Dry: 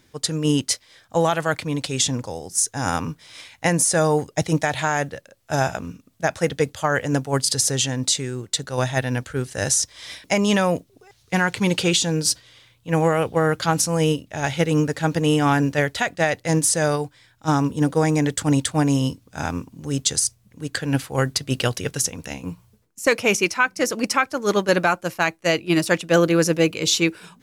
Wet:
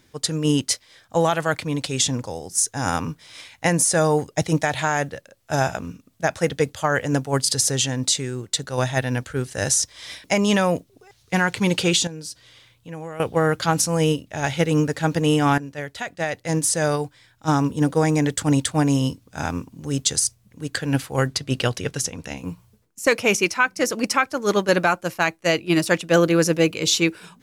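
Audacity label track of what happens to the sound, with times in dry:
12.070000	13.200000	downward compressor 2.5 to 1, threshold −38 dBFS
15.580000	17.000000	fade in, from −16 dB
21.270000	22.370000	high-shelf EQ 9,700 Hz −10 dB

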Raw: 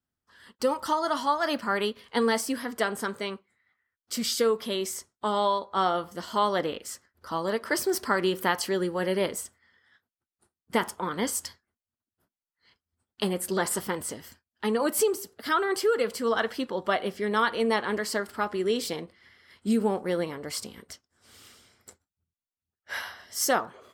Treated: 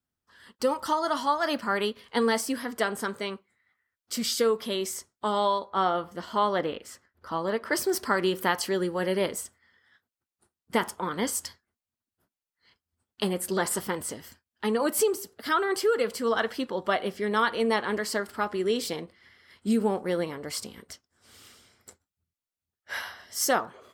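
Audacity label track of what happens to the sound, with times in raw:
5.700000	7.730000	bass and treble bass 0 dB, treble −8 dB

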